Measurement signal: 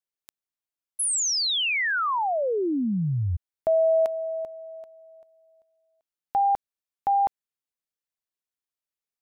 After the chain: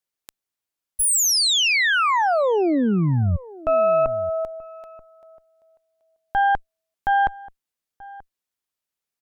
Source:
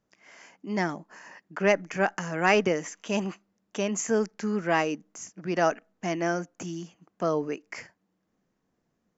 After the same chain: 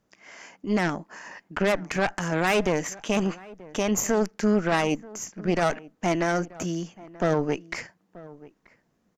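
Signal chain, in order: Chebyshev shaper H 6 -15 dB, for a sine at -9 dBFS; peak limiter -18 dBFS; echo from a far wall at 160 m, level -20 dB; trim +5.5 dB

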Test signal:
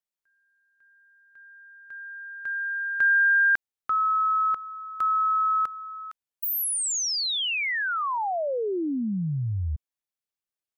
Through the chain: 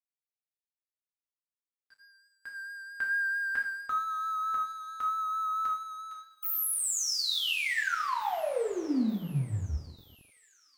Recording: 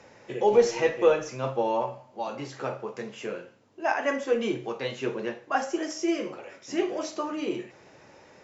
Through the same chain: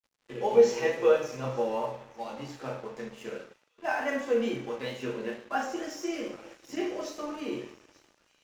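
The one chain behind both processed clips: two-slope reverb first 0.49 s, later 3.2 s, from -20 dB, DRR -2 dB; vibrato 4.5 Hz 23 cents; crossover distortion -42.5 dBFS; on a send: feedback echo behind a high-pass 885 ms, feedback 59%, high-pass 3.2 kHz, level -20 dB; on the sum: trim -7 dB

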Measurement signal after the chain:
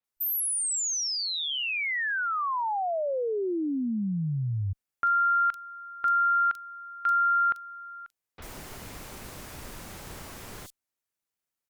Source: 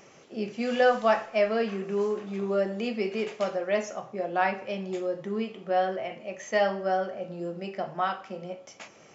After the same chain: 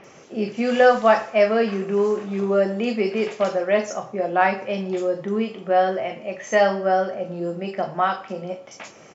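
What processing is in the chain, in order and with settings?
Chebyshev shaper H 2 -31 dB, 5 -44 dB, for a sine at -10.5 dBFS; bands offset in time lows, highs 40 ms, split 3.7 kHz; trim +7 dB

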